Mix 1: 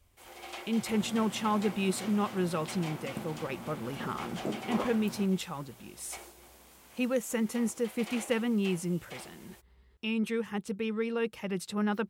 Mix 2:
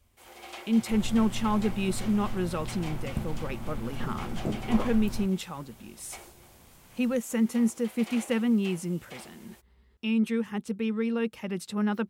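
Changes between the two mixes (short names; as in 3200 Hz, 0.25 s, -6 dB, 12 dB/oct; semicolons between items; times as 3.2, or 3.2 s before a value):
speech: add bell 230 Hz +7.5 dB 0.23 oct; second sound: remove HPF 250 Hz 12 dB/oct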